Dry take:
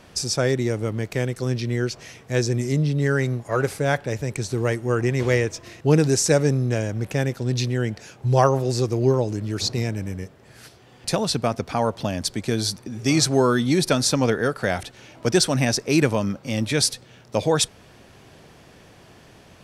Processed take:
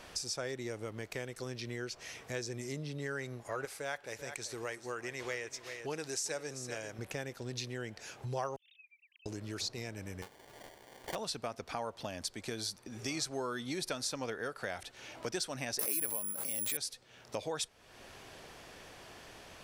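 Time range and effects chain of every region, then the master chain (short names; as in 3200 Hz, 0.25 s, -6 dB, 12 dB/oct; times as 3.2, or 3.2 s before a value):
3.65–6.99 low shelf 390 Hz -10.5 dB + echo 0.388 s -15 dB
8.56–9.26 sine-wave speech + expander -30 dBFS + steep high-pass 2600 Hz 48 dB/oct
10.22–11.15 CVSD 32 kbps + sample-rate reducer 1300 Hz + low shelf 170 Hz -9 dB
15.79–16.77 HPF 140 Hz + careless resampling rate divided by 4×, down none, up zero stuff + backwards sustainer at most 26 dB/s
whole clip: bell 140 Hz -11 dB 2.6 oct; compressor 2.5:1, threshold -42 dBFS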